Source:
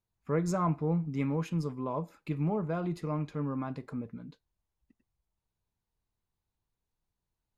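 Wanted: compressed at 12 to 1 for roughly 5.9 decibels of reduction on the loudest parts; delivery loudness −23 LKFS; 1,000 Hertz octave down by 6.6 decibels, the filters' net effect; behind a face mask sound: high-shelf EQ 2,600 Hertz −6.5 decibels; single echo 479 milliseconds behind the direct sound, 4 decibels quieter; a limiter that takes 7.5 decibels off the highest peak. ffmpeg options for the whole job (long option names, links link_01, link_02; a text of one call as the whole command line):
ffmpeg -i in.wav -af "equalizer=frequency=1000:width_type=o:gain=-7,acompressor=threshold=-31dB:ratio=12,alimiter=level_in=8.5dB:limit=-24dB:level=0:latency=1,volume=-8.5dB,highshelf=frequency=2600:gain=-6.5,aecho=1:1:479:0.631,volume=17.5dB" out.wav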